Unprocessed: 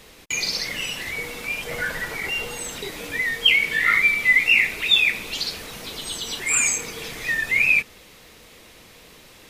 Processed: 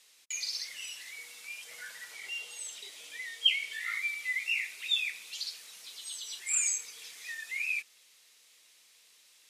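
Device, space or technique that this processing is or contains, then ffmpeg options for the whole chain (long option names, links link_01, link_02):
piezo pickup straight into a mixer: -filter_complex "[0:a]asettb=1/sr,asplit=3[link_01][link_02][link_03];[link_01]atrim=end=2.134[link_04];[link_02]atrim=start=2.13:end=3.73,asetpts=PTS-STARTPTS,afade=type=in:duration=0.004:curve=qsin,afade=type=out:start_time=1.596:duration=0.004:curve=qsin,equalizer=frequency=400:width_type=o:width=0.33:gain=4,equalizer=frequency=630:width_type=o:width=0.33:gain=6,equalizer=frequency=1600:width_type=o:width=0.33:gain=-3,equalizer=frequency=3150:width_type=o:width=0.33:gain=6,equalizer=frequency=12500:width_type=o:width=0.33:gain=-5[link_05];[link_03]atrim=start=3.726[link_06];[link_04][link_05]acrossfade=duration=0.004:curve1=hsin:curve2=qsin[link_07];[link_07][link_06]acrossfade=duration=0.004:curve1=qsin:curve2=hsin,lowpass=8700,aderivative,volume=-6dB"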